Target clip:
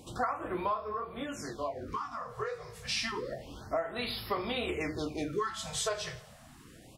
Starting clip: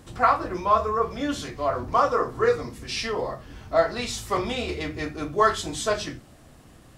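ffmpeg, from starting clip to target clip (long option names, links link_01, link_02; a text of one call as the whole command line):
ffmpeg -i in.wav -filter_complex "[0:a]lowshelf=frequency=120:gain=-9,aecho=1:1:81|162|243|324:0.106|0.0487|0.0224|0.0103,acompressor=threshold=-29dB:ratio=10,asplit=3[link_01][link_02][link_03];[link_01]afade=type=out:start_time=0.74:duration=0.02[link_04];[link_02]flanger=delay=18.5:depth=6.8:speed=1.5,afade=type=in:start_time=0.74:duration=0.02,afade=type=out:start_time=2.84:duration=0.02[link_05];[link_03]afade=type=in:start_time=2.84:duration=0.02[link_06];[link_04][link_05][link_06]amix=inputs=3:normalize=0,afftfilt=real='re*(1-between(b*sr/1024,250*pow(7800/250,0.5+0.5*sin(2*PI*0.29*pts/sr))/1.41,250*pow(7800/250,0.5+0.5*sin(2*PI*0.29*pts/sr))*1.41))':imag='im*(1-between(b*sr/1024,250*pow(7800/250,0.5+0.5*sin(2*PI*0.29*pts/sr))/1.41,250*pow(7800/250,0.5+0.5*sin(2*PI*0.29*pts/sr))*1.41))':win_size=1024:overlap=0.75" out.wav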